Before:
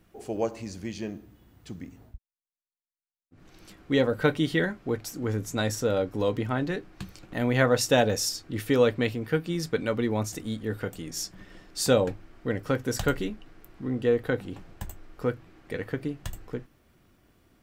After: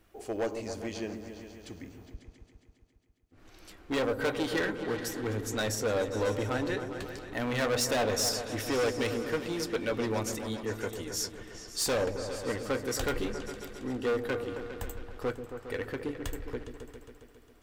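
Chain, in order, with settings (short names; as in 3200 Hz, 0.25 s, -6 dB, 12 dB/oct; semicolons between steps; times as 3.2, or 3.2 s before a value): hard clip -24.5 dBFS, distortion -7 dB; bell 160 Hz -12.5 dB 0.96 oct; repeats that get brighter 0.136 s, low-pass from 400 Hz, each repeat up 2 oct, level -6 dB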